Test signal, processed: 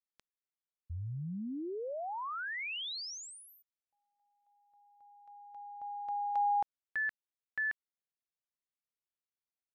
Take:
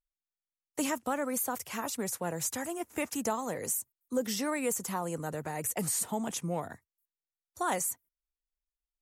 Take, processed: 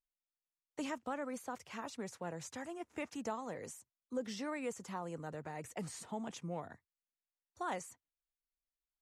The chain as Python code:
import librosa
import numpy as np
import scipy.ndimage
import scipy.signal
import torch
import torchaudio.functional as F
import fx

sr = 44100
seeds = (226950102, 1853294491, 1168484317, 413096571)

y = scipy.signal.sosfilt(scipy.signal.butter(2, 4900.0, 'lowpass', fs=sr, output='sos'), x)
y = y * librosa.db_to_amplitude(-8.0)